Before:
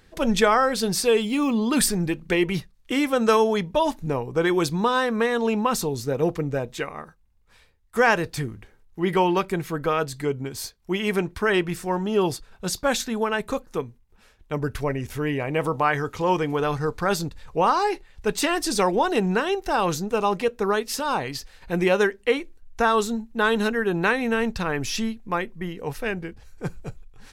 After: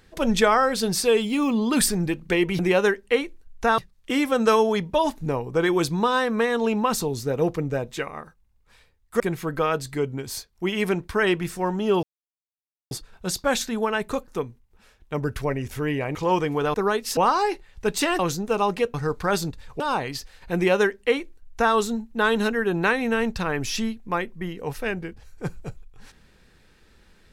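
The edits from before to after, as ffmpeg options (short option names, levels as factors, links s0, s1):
-filter_complex "[0:a]asplit=11[s0][s1][s2][s3][s4][s5][s6][s7][s8][s9][s10];[s0]atrim=end=2.592[s11];[s1]atrim=start=21.748:end=22.942[s12];[s2]atrim=start=2.588:end=8.012[s13];[s3]atrim=start=9.468:end=12.3,asetpts=PTS-STARTPTS,afade=t=out:st=2.828:d=0.004:c=hsin,apad=pad_dur=0.88[s14];[s4]atrim=start=12.3:end=15.542,asetpts=PTS-STARTPTS,afade=t=in:d=0.004:c=hsin[s15];[s5]atrim=start=16.128:end=16.722[s16];[s6]atrim=start=20.568:end=21.002[s17];[s7]atrim=start=17.578:end=18.602[s18];[s8]atrim=start=19.818:end=20.572[s19];[s9]atrim=start=16.718:end=17.582[s20];[s10]atrim=start=20.998[s21];[s11][s12]acrossfade=d=0.004:c1=hsin:c2=hsin[s22];[s22][s13]acrossfade=d=0.004:c1=hsin:c2=hsin[s23];[s14][s15]concat=n=2:v=0:a=1[s24];[s23][s24]acrossfade=d=0.004:c1=hsin:c2=hsin[s25];[s25][s16]acrossfade=d=0.004:c1=hsin:c2=hsin[s26];[s26][s17]acrossfade=d=0.004:c1=hsin:c2=hsin[s27];[s27][s18]acrossfade=d=0.004:c1=hsin:c2=hsin[s28];[s28][s19]acrossfade=d=0.004:c1=hsin:c2=hsin[s29];[s29][s20]acrossfade=d=0.004:c1=hsin:c2=hsin[s30];[s30][s21]acrossfade=d=0.004:c1=hsin:c2=hsin"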